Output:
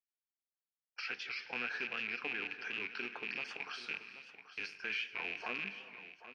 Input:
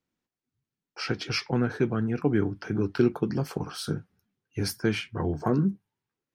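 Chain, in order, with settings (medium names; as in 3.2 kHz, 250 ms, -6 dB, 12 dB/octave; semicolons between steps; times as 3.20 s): rattle on loud lows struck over -30 dBFS, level -27 dBFS; gate -45 dBFS, range -22 dB; differentiator; compression 2:1, threshold -42 dBFS, peak gain reduction 7 dB; peak limiter -39.5 dBFS, peak gain reduction 12.5 dB; cabinet simulation 150–4000 Hz, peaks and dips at 150 Hz -7 dB, 330 Hz -6 dB, 1.7 kHz +4 dB, 2.5 kHz +7 dB, 3.6 kHz -5 dB; delay 782 ms -13 dB; gated-style reverb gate 480 ms flat, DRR 11.5 dB; warped record 78 rpm, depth 100 cents; trim +9.5 dB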